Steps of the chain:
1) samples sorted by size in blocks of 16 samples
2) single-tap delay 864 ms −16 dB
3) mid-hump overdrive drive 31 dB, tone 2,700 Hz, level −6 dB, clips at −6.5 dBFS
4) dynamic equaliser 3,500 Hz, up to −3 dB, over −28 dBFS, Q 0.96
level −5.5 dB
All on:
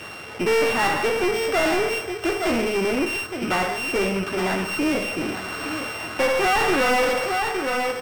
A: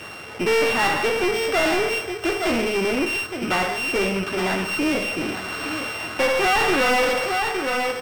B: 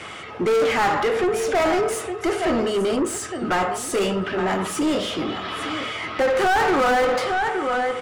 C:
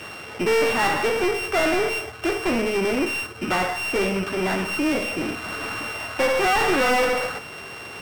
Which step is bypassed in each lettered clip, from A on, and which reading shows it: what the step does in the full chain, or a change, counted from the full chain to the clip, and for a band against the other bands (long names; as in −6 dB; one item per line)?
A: 4, 4 kHz band +2.0 dB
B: 1, distortion level −3 dB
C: 2, change in momentary loudness spread +1 LU